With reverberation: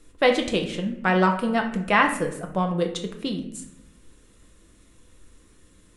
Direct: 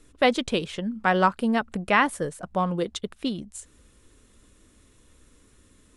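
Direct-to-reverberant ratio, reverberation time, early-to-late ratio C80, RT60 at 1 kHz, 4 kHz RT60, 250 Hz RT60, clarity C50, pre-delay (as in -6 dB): 3.0 dB, 0.75 s, 12.0 dB, 0.70 s, 0.50 s, 1.1 s, 8.5 dB, 6 ms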